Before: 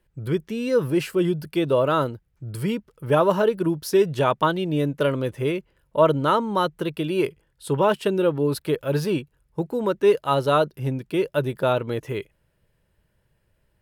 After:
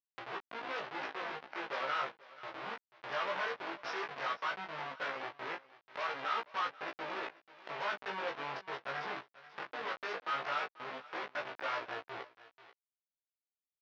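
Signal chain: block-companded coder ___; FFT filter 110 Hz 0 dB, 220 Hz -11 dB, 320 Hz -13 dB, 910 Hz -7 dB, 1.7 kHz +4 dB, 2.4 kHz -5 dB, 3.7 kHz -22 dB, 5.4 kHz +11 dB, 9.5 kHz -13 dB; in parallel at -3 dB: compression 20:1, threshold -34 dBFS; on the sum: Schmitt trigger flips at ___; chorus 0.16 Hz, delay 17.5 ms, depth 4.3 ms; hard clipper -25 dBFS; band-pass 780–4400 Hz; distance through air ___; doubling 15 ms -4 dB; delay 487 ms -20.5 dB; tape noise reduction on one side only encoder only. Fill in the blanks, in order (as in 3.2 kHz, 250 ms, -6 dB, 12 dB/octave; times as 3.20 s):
3-bit, -26 dBFS, 240 m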